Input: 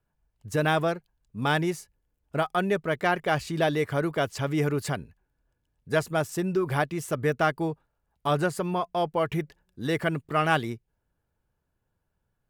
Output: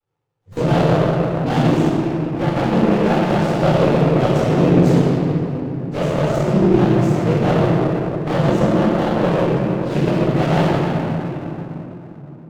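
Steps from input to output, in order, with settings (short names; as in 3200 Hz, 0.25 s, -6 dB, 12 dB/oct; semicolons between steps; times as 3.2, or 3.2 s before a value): in parallel at -8.5 dB: soft clip -23 dBFS, distortion -11 dB; on the sum: noise vocoder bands 16; envelope flanger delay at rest 2.3 ms, full sweep at -21 dBFS; shoebox room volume 180 m³, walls hard, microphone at 2.2 m; running maximum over 17 samples; gain -3 dB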